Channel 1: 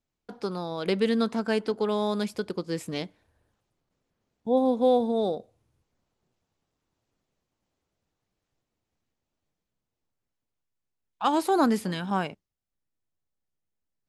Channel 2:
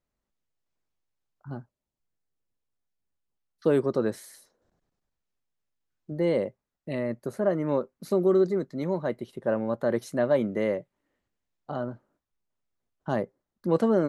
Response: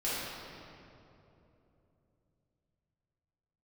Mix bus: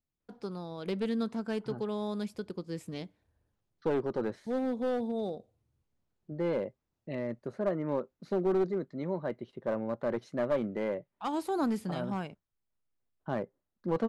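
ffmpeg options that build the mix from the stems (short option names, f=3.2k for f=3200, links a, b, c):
-filter_complex "[0:a]lowshelf=f=310:g=8,volume=-11dB[a];[1:a]lowpass=3.8k,adelay=200,volume=-5.5dB[b];[a][b]amix=inputs=2:normalize=0,aeval=exprs='clip(val(0),-1,0.0501)':c=same"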